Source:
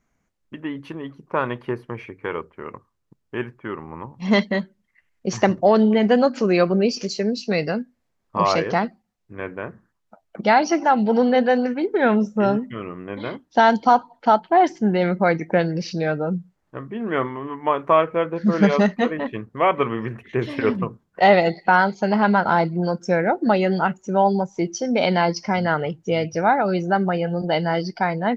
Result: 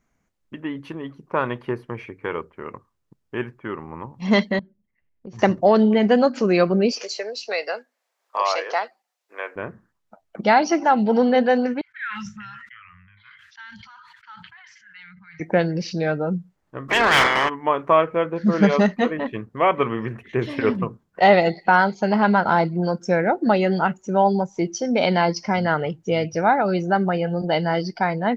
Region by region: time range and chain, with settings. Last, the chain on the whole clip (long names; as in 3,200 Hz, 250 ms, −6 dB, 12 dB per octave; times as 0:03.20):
0:04.59–0:05.39: low-pass filter 2,300 Hz + parametric band 1,500 Hz −14.5 dB 2.3 octaves + downward compressor, threshold −34 dBFS
0:06.92–0:09.56: high-pass filter 530 Hz 24 dB per octave + multiband upward and downward compressor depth 40%
0:11.81–0:15.40: inverse Chebyshev band-stop filter 290–650 Hz, stop band 70 dB + auto-filter band-pass sine 1.4 Hz 350–1,800 Hz + level that may fall only so fast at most 24 dB per second
0:16.88–0:17.48: ceiling on every frequency bin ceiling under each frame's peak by 27 dB + mid-hump overdrive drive 23 dB, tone 5,500 Hz, clips at −8 dBFS
whole clip: no processing